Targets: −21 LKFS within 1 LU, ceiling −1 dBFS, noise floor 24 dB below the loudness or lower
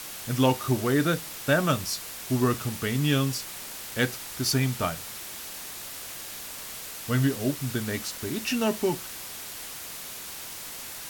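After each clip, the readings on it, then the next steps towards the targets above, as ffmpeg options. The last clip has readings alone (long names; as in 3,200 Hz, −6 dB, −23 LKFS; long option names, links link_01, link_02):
background noise floor −39 dBFS; target noise floor −53 dBFS; integrated loudness −28.5 LKFS; sample peak −8.5 dBFS; target loudness −21.0 LKFS
→ -af "afftdn=noise_reduction=14:noise_floor=-39"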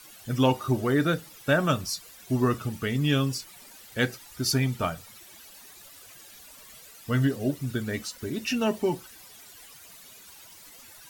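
background noise floor −50 dBFS; target noise floor −52 dBFS
→ -af "afftdn=noise_reduction=6:noise_floor=-50"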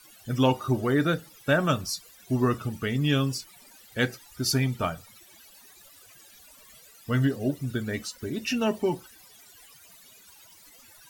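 background noise floor −54 dBFS; integrated loudness −27.5 LKFS; sample peak −9.0 dBFS; target loudness −21.0 LKFS
→ -af "volume=6.5dB"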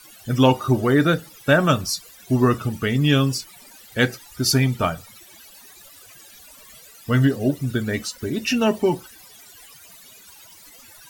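integrated loudness −21.0 LKFS; sample peak −2.5 dBFS; background noise floor −47 dBFS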